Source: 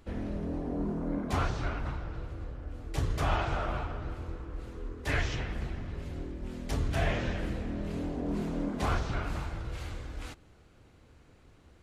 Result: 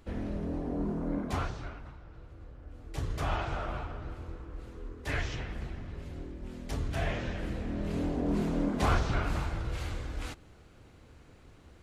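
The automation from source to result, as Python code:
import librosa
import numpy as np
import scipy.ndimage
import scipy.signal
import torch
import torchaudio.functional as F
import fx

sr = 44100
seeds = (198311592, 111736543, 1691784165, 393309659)

y = fx.gain(x, sr, db=fx.line((1.21, 0.0), (1.93, -13.0), (3.15, -3.0), (7.31, -3.0), (8.02, 3.0)))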